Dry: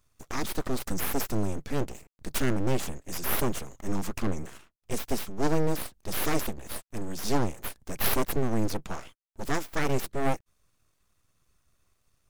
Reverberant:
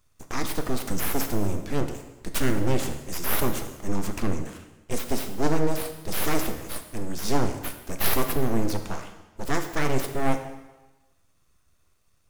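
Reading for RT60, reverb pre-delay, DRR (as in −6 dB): 1.1 s, 7 ms, 6.0 dB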